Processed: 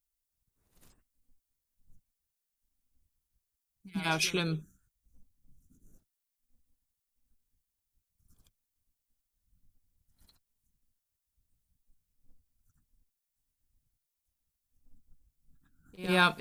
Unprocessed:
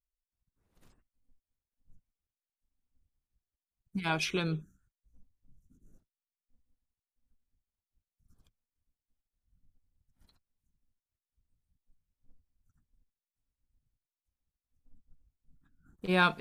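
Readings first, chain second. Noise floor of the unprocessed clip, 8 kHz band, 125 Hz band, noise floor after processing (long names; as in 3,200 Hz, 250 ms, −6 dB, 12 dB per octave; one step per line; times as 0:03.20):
below −85 dBFS, +7.0 dB, 0.0 dB, below −85 dBFS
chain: high-shelf EQ 5,500 Hz +12 dB
echo ahead of the sound 103 ms −16 dB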